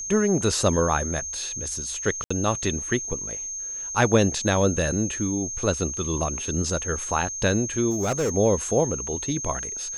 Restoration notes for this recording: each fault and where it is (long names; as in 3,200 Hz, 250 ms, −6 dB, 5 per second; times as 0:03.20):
whistle 6,400 Hz −30 dBFS
0:02.24–0:02.31: drop-out 65 ms
0:07.90–0:08.30: clipping −20 dBFS